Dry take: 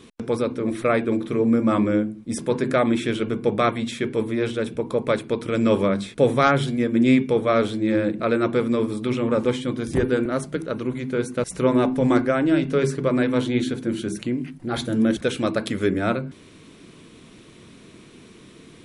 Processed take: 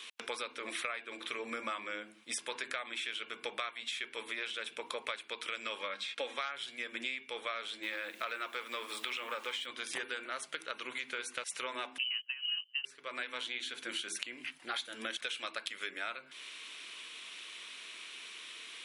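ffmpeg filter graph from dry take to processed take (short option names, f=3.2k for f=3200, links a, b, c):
-filter_complex "[0:a]asettb=1/sr,asplit=3[a][b][c];[a]atrim=end=5.794[d];[b]atrim=start=5.79:end=6.38,asetpts=PTS-STARTPTS,afade=t=in:d=0.004:c=qsin,afade=t=out:st=0.586:d=0.004:c=qsin,highpass=170,lowpass=6.1k,aecho=1:1:3.7:0.52,atrim=end_sample=26019[e];[c]atrim=start=6.376[f];[d][e]acrossfade=d=0.004:c1=hsin:c2=qsin[g];[g][f]acrossfade=d=0.004:c1=qsin:c2=hsin,asettb=1/sr,asplit=3[h][i][j];[h]atrim=end=7.834[k];[i]atrim=start=7.83:end=9.66,asetpts=PTS-STARTPTS,afade=t=in:d=0.004:c=qsin,afade=t=out:st=1.826:d=0.004:c=qsin,asplit=2[l][m];[m]highpass=f=720:p=1,volume=11dB,asoftclip=type=tanh:threshold=-8dB[n];[l][n]amix=inputs=2:normalize=0,lowpass=f=6.8k:p=1,volume=-6dB,acrusher=bits=9:dc=4:mix=0:aa=0.000001,equalizer=f=3.9k:w=0.33:g=-4[o];[j]atrim=start=9.656[p];[k][o]acrossfade=d=0.004:c1=hsin:c2=qsin[q];[q][p]acrossfade=d=0.004:c1=qsin:c2=hsin,asettb=1/sr,asplit=3[r][s][t];[r]atrim=end=11.984[u];[s]atrim=start=11.98:end=12.85,asetpts=PTS-STARTPTS,afade=t=in:d=0.004:c=qsin,afade=t=out:st=0.866:d=0.004:c=qsin,agate=range=-27dB:threshold=-20dB:ratio=16:release=100:detection=peak,lowpass=f=2.7k:t=q:w=0.5098,lowpass=f=2.7k:t=q:w=0.6013,lowpass=f=2.7k:t=q:w=0.9,lowpass=f=2.7k:t=q:w=2.563,afreqshift=-3200[v];[t]atrim=start=12.846[w];[u][v]acrossfade=d=0.004:c1=hsin:c2=qsin[x];[x][w]acrossfade=d=0.004:c1=qsin:c2=hsin,highpass=1.2k,equalizer=f=2.9k:t=o:w=0.97:g=8,acompressor=threshold=-37dB:ratio=12,volume=2dB"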